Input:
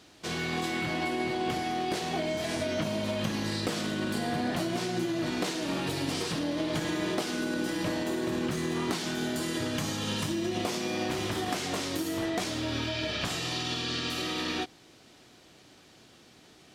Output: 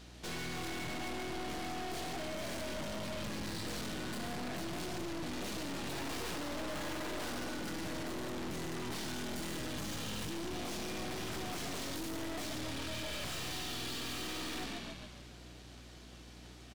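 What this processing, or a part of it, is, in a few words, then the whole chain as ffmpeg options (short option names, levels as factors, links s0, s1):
valve amplifier with mains hum: -filter_complex "[0:a]asettb=1/sr,asplit=3[s0][s1][s2];[s0]atrim=end=5.924[s3];[s1]atrim=start=5.92:end=7.31,asetpts=PTS-STARTPTS,afade=t=in:d=0.004:c=qsin,afade=t=out:st=1.386:d=0.004:c=qsin,equalizer=f=990:w=0.39:g=10.5[s4];[s2]atrim=start=7.306[s5];[s3][s4]acrossfade=d=0.004:c1=hsin:c2=qsin[s6];[s6][s5]acrossfade=d=0.004:c1=qsin:c2=hsin,asplit=7[s7][s8][s9][s10][s11][s12][s13];[s8]adelay=141,afreqshift=-41,volume=0.447[s14];[s9]adelay=282,afreqshift=-82,volume=0.219[s15];[s10]adelay=423,afreqshift=-123,volume=0.107[s16];[s11]adelay=564,afreqshift=-164,volume=0.0525[s17];[s12]adelay=705,afreqshift=-205,volume=0.0257[s18];[s13]adelay=846,afreqshift=-246,volume=0.0126[s19];[s7][s14][s15][s16][s17][s18][s19]amix=inputs=7:normalize=0,aeval=exprs='(tanh(126*val(0)+0.65)-tanh(0.65))/126':c=same,aeval=exprs='val(0)+0.00158*(sin(2*PI*60*n/s)+sin(2*PI*2*60*n/s)/2+sin(2*PI*3*60*n/s)/3+sin(2*PI*4*60*n/s)/4+sin(2*PI*5*60*n/s)/5)':c=same,volume=1.33"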